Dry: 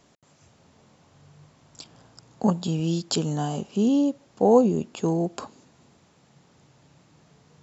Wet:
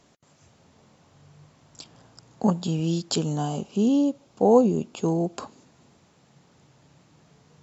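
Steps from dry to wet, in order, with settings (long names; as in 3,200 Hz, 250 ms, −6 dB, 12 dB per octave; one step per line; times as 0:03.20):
0:03.23–0:05.34: parametric band 1,800 Hz −7.5 dB 0.28 octaves
Ogg Vorbis 96 kbit/s 44,100 Hz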